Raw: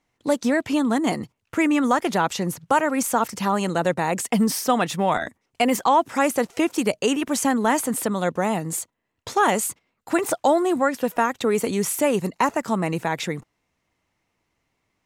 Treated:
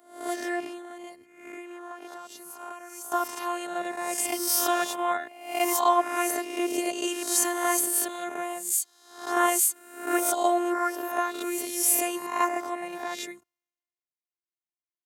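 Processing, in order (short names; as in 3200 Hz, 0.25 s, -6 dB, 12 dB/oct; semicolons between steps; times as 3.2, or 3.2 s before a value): spectral swells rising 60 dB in 0.85 s; robotiser 351 Hz; HPF 120 Hz 12 dB/oct; high shelf 10000 Hz +11 dB; 0.65–3.12 compressor 6:1, threshold -25 dBFS, peak gain reduction 11 dB; low shelf 180 Hz -7.5 dB; three-band expander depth 70%; gain -6 dB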